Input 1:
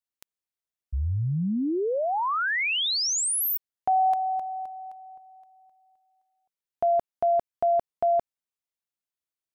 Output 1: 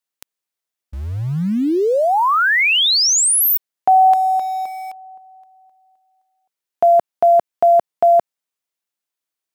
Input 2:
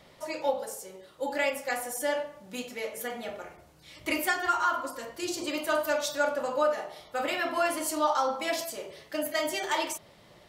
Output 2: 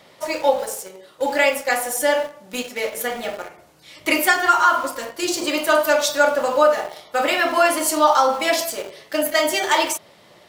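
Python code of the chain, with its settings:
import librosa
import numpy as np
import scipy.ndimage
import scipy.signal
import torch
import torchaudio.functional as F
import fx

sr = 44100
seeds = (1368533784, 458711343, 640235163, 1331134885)

p1 = fx.highpass(x, sr, hz=240.0, slope=6)
p2 = np.where(np.abs(p1) >= 10.0 ** (-38.5 / 20.0), p1, 0.0)
p3 = p1 + F.gain(torch.from_numpy(p2), -4.0).numpy()
y = F.gain(torch.from_numpy(p3), 7.0).numpy()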